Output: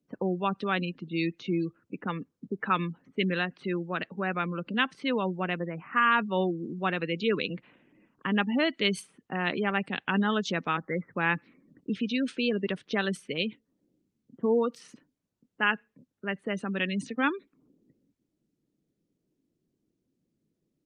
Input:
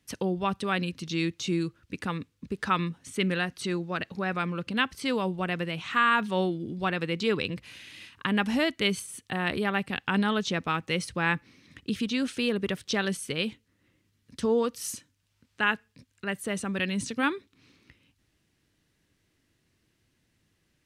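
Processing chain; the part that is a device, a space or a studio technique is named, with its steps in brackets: 5.59–6.00 s: low-pass 1.4 kHz -> 3.2 kHz 24 dB/octave; 10.77–11.17 s: steep low-pass 2.1 kHz 96 dB/octave; level-controlled noise filter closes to 430 Hz, open at -23.5 dBFS; noise-suppressed video call (high-pass 160 Hz 24 dB/octave; spectral gate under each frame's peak -25 dB strong; Opus 32 kbps 48 kHz)

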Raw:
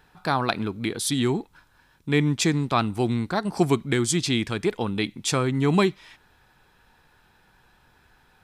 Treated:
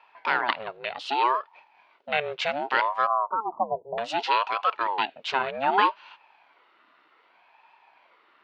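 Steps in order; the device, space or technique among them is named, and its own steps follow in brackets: 3.07–3.98 s: steep low-pass 690 Hz 96 dB/octave; voice changer toy (ring modulator with a swept carrier 590 Hz, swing 55%, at 0.65 Hz; cabinet simulation 440–4000 Hz, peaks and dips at 500 Hz -6 dB, 950 Hz +8 dB, 1.4 kHz +5 dB, 2.6 kHz +6 dB)

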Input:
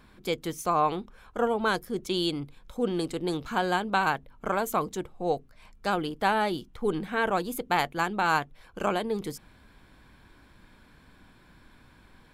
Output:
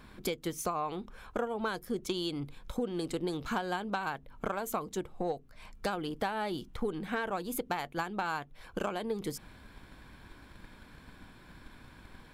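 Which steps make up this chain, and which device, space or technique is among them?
drum-bus smash (transient shaper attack +6 dB, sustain +1 dB; compression 6:1, threshold -32 dBFS, peak gain reduction 15 dB; saturation -22.5 dBFS, distortion -21 dB); trim +2 dB

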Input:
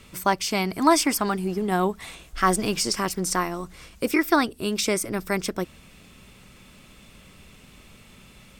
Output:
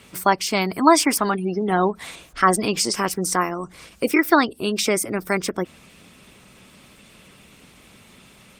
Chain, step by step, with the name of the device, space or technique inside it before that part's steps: noise-suppressed video call (high-pass 170 Hz 6 dB/octave; spectral gate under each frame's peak -30 dB strong; trim +4.5 dB; Opus 20 kbps 48 kHz)

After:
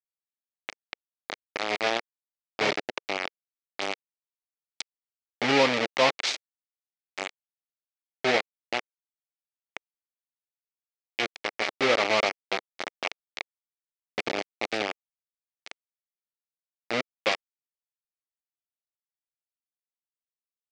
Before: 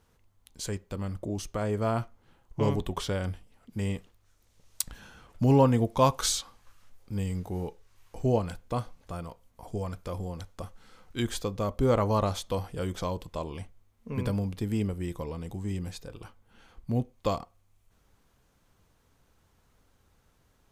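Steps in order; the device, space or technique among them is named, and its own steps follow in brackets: hand-held game console (bit crusher 4-bit; cabinet simulation 430–5100 Hz, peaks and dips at 470 Hz -3 dB, 1 kHz -8 dB, 1.5 kHz -4 dB, 2.2 kHz +6 dB); trim +4 dB

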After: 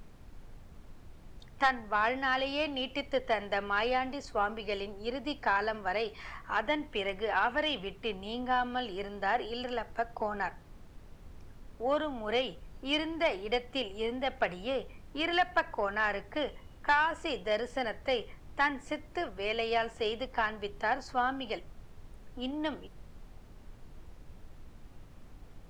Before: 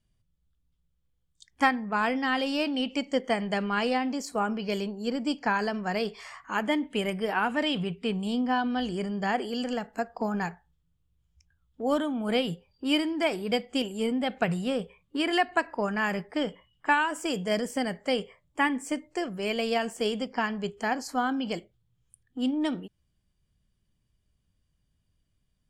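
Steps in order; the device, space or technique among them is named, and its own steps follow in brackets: aircraft cabin announcement (band-pass 460–3500 Hz; saturation -17.5 dBFS, distortion -18 dB; brown noise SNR 14 dB)

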